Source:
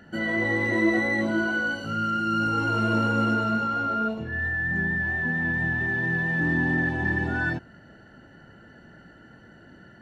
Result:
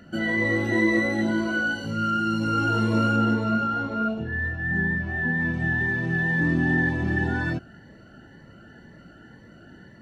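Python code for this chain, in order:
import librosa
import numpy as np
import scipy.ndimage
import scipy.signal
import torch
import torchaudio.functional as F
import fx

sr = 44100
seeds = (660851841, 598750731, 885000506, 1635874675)

y = fx.high_shelf(x, sr, hz=5100.0, db=-8.5, at=(3.16, 5.4))
y = fx.notch_cascade(y, sr, direction='rising', hz=2.0)
y = F.gain(torch.from_numpy(y), 3.0).numpy()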